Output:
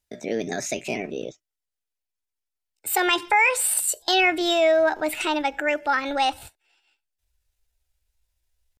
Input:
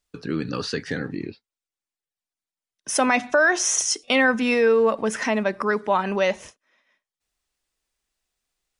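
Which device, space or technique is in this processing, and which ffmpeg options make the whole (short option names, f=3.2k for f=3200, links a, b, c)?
chipmunk voice: -af "bandreject=f=800:w=5,asetrate=62367,aresample=44100,atempo=0.707107,asubboost=boost=8:cutoff=70"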